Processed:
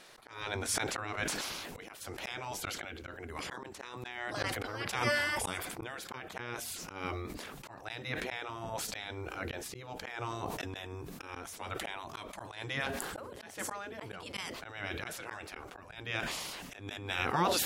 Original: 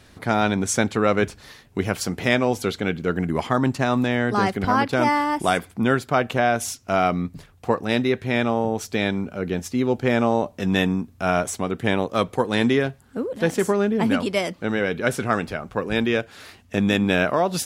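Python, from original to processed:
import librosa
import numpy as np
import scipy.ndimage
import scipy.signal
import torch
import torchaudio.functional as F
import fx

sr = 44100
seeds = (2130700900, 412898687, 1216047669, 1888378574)

y = fx.spec_gate(x, sr, threshold_db=-10, keep='weak')
y = fx.auto_swell(y, sr, attack_ms=534.0)
y = fx.sustainer(y, sr, db_per_s=25.0)
y = F.gain(torch.from_numpy(y), -1.0).numpy()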